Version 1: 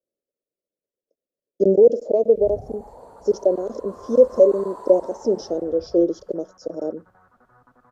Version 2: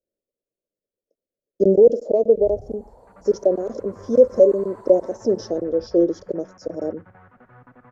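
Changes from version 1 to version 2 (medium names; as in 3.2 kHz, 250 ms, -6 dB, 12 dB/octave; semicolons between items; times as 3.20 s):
first sound -8.0 dB; second sound: remove four-pole ladder low-pass 1.6 kHz, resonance 40%; master: add bass shelf 90 Hz +12 dB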